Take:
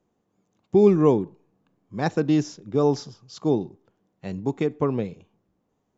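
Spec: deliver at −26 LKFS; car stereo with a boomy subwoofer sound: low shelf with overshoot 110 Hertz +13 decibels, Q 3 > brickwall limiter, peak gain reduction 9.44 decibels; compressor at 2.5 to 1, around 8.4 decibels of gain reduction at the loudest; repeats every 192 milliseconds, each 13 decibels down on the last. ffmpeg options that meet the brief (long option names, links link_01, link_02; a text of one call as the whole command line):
ffmpeg -i in.wav -af "acompressor=threshold=-25dB:ratio=2.5,lowshelf=frequency=110:width_type=q:width=3:gain=13,aecho=1:1:192|384|576:0.224|0.0493|0.0108,volume=9dB,alimiter=limit=-15.5dB:level=0:latency=1" out.wav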